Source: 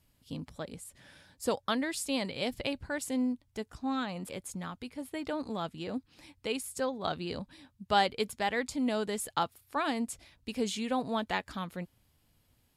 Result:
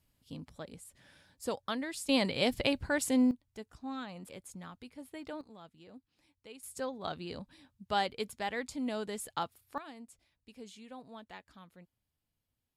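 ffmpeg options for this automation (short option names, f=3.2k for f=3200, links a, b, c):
-af "asetnsamples=n=441:p=0,asendcmd='2.09 volume volume 4dB;3.31 volume volume -7.5dB;5.41 volume volume -17dB;6.63 volume volume -5dB;9.78 volume volume -17dB',volume=-5dB"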